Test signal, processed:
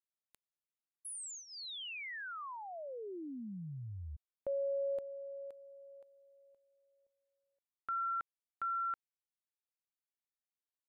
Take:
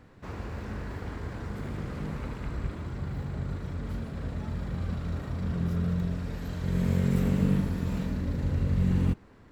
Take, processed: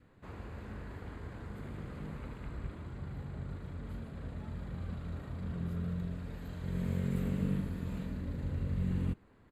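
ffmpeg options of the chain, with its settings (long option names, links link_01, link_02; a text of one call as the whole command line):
ffmpeg -i in.wav -af "equalizer=frequency=5600:width=5.3:gain=-14.5,aresample=32000,aresample=44100,adynamicequalizer=threshold=0.00398:dfrequency=830:dqfactor=2.7:tfrequency=830:tqfactor=2.7:attack=5:release=100:ratio=0.375:range=2:mode=cutabove:tftype=bell,volume=-8dB" out.wav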